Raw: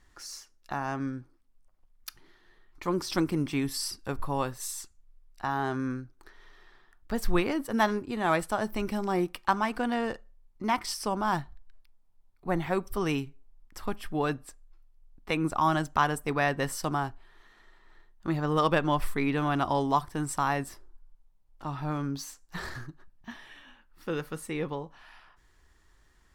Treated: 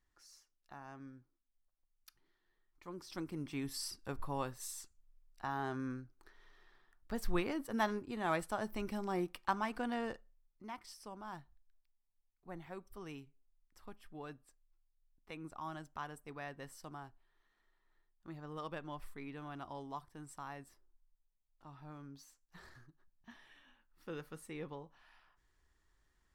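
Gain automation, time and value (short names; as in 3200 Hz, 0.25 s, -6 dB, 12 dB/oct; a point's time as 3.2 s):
2.93 s -19 dB
3.79 s -9 dB
10.12 s -9 dB
10.69 s -19.5 dB
22.89 s -19.5 dB
23.38 s -12.5 dB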